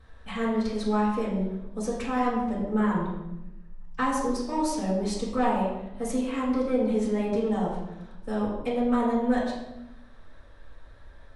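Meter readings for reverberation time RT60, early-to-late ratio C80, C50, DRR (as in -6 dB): 0.90 s, 5.0 dB, 2.5 dB, -9.0 dB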